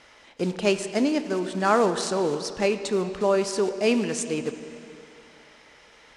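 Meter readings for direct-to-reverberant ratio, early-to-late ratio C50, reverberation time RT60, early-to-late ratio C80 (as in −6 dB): 9.0 dB, 10.0 dB, 2.7 s, 10.5 dB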